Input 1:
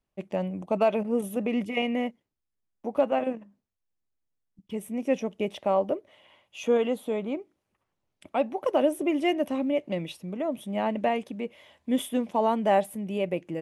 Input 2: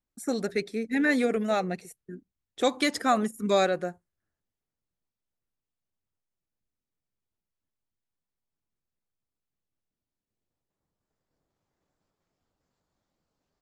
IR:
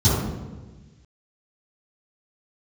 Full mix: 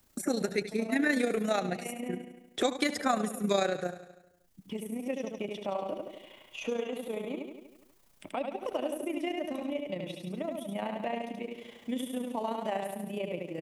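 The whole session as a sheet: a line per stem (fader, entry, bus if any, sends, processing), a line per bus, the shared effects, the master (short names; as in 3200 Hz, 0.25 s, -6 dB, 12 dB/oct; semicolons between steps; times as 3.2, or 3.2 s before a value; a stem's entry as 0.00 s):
-10.5 dB, 0.00 s, no send, echo send -4 dB, auto duck -14 dB, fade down 0.25 s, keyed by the second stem
+2.5 dB, 0.00 s, no send, echo send -13.5 dB, high shelf 5900 Hz +6.5 dB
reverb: off
echo: feedback echo 81 ms, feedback 47%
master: AM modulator 29 Hz, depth 40%; three-band squash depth 70%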